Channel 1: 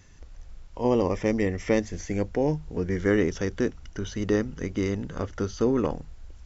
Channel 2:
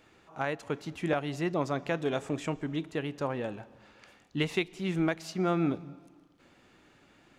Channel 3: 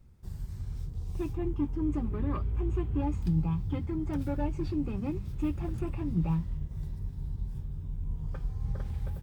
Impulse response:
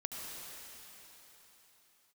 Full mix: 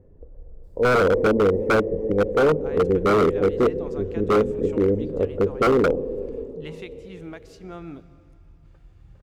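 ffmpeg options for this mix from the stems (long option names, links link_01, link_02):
-filter_complex "[0:a]lowpass=frequency=480:width_type=q:width=4.9,volume=-1dB,asplit=3[link_01][link_02][link_03];[link_02]volume=-8dB[link_04];[link_03]volume=-19dB[link_05];[1:a]adelay=2250,volume=-11dB,asplit=2[link_06][link_07];[link_07]volume=-16dB[link_08];[2:a]adelay=400,volume=-16.5dB[link_09];[3:a]atrim=start_sample=2205[link_10];[link_04][link_08]amix=inputs=2:normalize=0[link_11];[link_11][link_10]afir=irnorm=-1:irlink=0[link_12];[link_05]aecho=0:1:62|124|186|248|310|372|434|496|558|620:1|0.6|0.36|0.216|0.13|0.0778|0.0467|0.028|0.0168|0.0101[link_13];[link_01][link_06][link_09][link_12][link_13]amix=inputs=5:normalize=0,aeval=exprs='0.251*(abs(mod(val(0)/0.251+3,4)-2)-1)':channel_layout=same"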